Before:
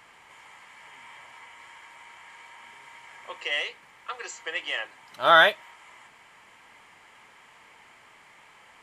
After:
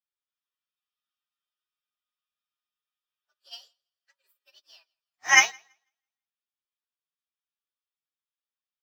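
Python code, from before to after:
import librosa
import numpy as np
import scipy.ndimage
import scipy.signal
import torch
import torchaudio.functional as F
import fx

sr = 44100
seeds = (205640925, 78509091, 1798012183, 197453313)

y = fx.partial_stretch(x, sr, pct=121)
y = fx.tilt_eq(y, sr, slope=2.5)
y = fx.echo_feedback(y, sr, ms=165, feedback_pct=46, wet_db=-13.0)
y = fx.upward_expand(y, sr, threshold_db=-45.0, expansion=2.5)
y = y * librosa.db_to_amplitude(1.5)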